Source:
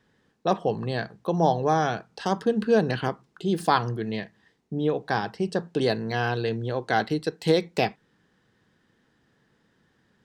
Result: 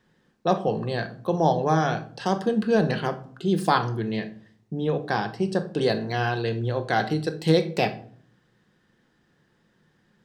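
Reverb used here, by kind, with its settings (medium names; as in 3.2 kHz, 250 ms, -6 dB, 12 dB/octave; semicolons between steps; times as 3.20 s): simulated room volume 570 m³, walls furnished, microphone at 0.91 m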